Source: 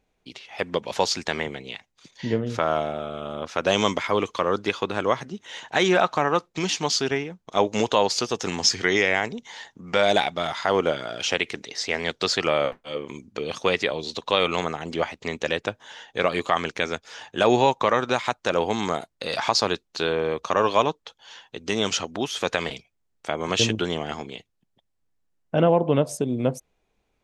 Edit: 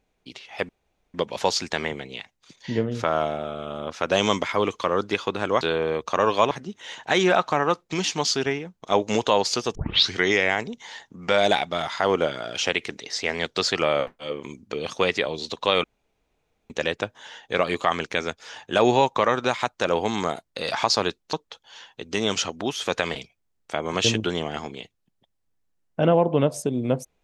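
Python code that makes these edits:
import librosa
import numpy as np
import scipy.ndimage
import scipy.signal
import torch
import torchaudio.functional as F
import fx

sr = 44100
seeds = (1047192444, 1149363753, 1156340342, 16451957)

y = fx.edit(x, sr, fx.insert_room_tone(at_s=0.69, length_s=0.45),
    fx.tape_start(start_s=8.4, length_s=0.37),
    fx.room_tone_fill(start_s=14.49, length_s=0.86),
    fx.move(start_s=19.98, length_s=0.9, to_s=5.16), tone=tone)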